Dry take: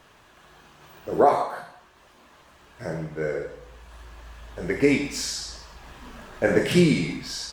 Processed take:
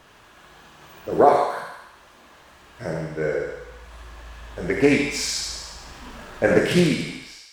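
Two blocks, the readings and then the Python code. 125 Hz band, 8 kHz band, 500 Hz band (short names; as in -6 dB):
+0.5 dB, +3.0 dB, +3.0 dB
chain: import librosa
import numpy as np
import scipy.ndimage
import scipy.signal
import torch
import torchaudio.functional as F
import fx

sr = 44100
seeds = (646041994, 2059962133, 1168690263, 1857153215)

y = fx.fade_out_tail(x, sr, length_s=0.95)
y = fx.echo_thinned(y, sr, ms=73, feedback_pct=68, hz=530.0, wet_db=-5)
y = fx.doppler_dist(y, sr, depth_ms=0.16)
y = F.gain(torch.from_numpy(y), 2.5).numpy()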